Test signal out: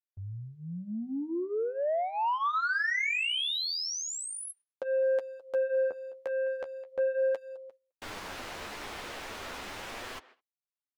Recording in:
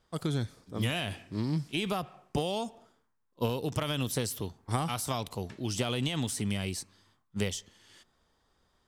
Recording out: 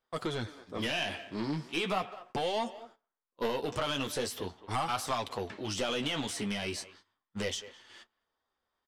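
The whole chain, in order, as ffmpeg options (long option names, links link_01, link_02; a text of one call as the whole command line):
ffmpeg -i in.wav -filter_complex "[0:a]highshelf=frequency=6200:gain=-5.5,asplit=2[link_01][link_02];[link_02]highpass=frequency=720:poles=1,volume=15dB,asoftclip=type=tanh:threshold=-14.5dB[link_03];[link_01][link_03]amix=inputs=2:normalize=0,lowpass=frequency=3100:poles=1,volume=-6dB,asplit=2[link_04][link_05];[link_05]adelay=210,highpass=300,lowpass=3400,asoftclip=type=hard:threshold=-24dB,volume=-17dB[link_06];[link_04][link_06]amix=inputs=2:normalize=0,aeval=exprs='0.178*sin(PI/2*1.78*val(0)/0.178)':channel_layout=same,agate=range=-16dB:threshold=-45dB:ratio=16:detection=peak,equalizer=frequency=140:width_type=o:width=0.44:gain=-6.5,flanger=delay=7.7:depth=6.8:regen=-23:speed=0.39:shape=sinusoidal,volume=-7dB" out.wav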